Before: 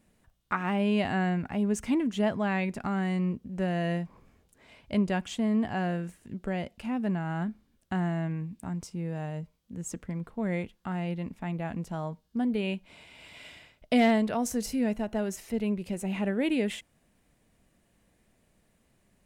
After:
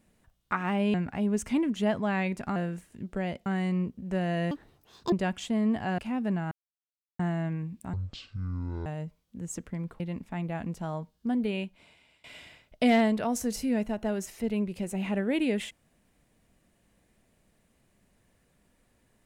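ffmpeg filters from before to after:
-filter_complex "[0:a]asplit=13[a][b][c][d][e][f][g][h][i][j][k][l][m];[a]atrim=end=0.942[n];[b]atrim=start=1.308:end=2.932[o];[c]atrim=start=5.868:end=6.772[p];[d]atrim=start=2.928:end=3.984[q];[e]atrim=start=3.98:end=5.01,asetpts=PTS-STARTPTS,asetrate=74088,aresample=44100[r];[f]atrim=start=5.006:end=5.872[s];[g]atrim=start=6.768:end=7.3,asetpts=PTS-STARTPTS,afade=t=out:st=0.528:d=0.004:c=hsin[t];[h]atrim=start=7.3:end=7.98,asetpts=PTS-STARTPTS,volume=0[u];[i]atrim=start=7.98:end=8.724,asetpts=PTS-STARTPTS,afade=t=in:d=0.004:c=hsin[v];[j]atrim=start=8.72:end=9.22,asetpts=PTS-STARTPTS,asetrate=23814,aresample=44100,atrim=end_sample=40833,asetpts=PTS-STARTPTS[w];[k]atrim=start=9.216:end=10.362[x];[l]atrim=start=11.098:end=13.34,asetpts=PTS-STARTPTS,afade=t=out:st=1.442:d=0.8:silence=0.0749894[y];[m]atrim=start=13.34,asetpts=PTS-STARTPTS,afade=t=in:d=0.004:c=hsin:silence=0.0749894[z];[n][o]acrossfade=d=0.004:c1=hsin:c2=hsin[aa];[aa][p]acrossfade=d=0.004:c1=hsin:c2=hsin[ab];[ab][q]acrossfade=d=0.004:c1=hsin:c2=hsin[ac];[ac][r]acrossfade=d=0.004:c1=hsin:c2=hsin[ad];[ad][s]acrossfade=d=0.004:c1=hsin:c2=hsin[ae];[t][u][v]concat=n=3:v=0:a=1[af];[ae][af]acrossfade=d=0.004:c1=hsin:c2=hsin[ag];[ag][w]acrossfade=d=0.004:c1=hsin:c2=hsin[ah];[ah][x]acrossfade=d=0.004:c1=hsin:c2=hsin[ai];[y][z]concat=n=2:v=0:a=1[aj];[ai][aj]acrossfade=d=0.004:c1=hsin:c2=hsin"

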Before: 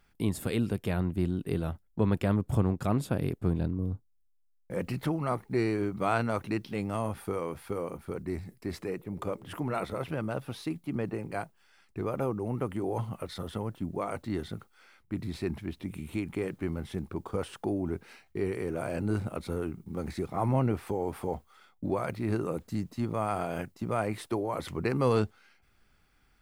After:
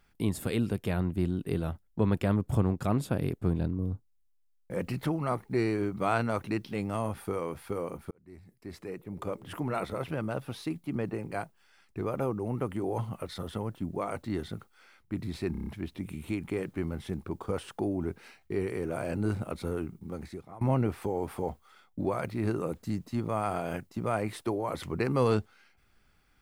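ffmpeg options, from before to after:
-filter_complex "[0:a]asplit=8[a][b][c][d][e][f][g][h];[a]atrim=end=8.11,asetpts=PTS-STARTPTS,afade=t=out:st=8.106:d=0.004:c=hsin[i];[b]atrim=start=8.11:end=15.552,asetpts=PTS-STARTPTS,afade=t=in:d=1.35[j];[c]atrim=start=15.518:end=15.552[k];[d]atrim=start=15.518:end=15.552[l];[e]atrim=start=15.518:end=15.552[m];[f]atrim=start=15.518:end=15.552[n];[g]atrim=start=15.518:end=20.46,asetpts=PTS-STARTPTS,afade=t=out:st=4.202:d=0.74:silence=0.0749894[o];[h]atrim=start=20.46,asetpts=PTS-STARTPTS,afade=t=in:d=0.004:c=hsin:silence=0.0749894[p];[i][j]concat=n=2:v=0:a=1[q];[q][k]acrossfade=d=0.004:c1=hsin:c2=hsin[r];[r][l]acrossfade=d=0.004:c1=hsin:c2=hsin[s];[s][m]acrossfade=d=0.004:c1=hsin:c2=hsin[t];[t][n]acrossfade=d=0.004:c1=hsin:c2=hsin[u];[o][p]concat=n=2:v=0:a=1[v];[u][v]acrossfade=d=0.004:c1=hsin:c2=hsin"

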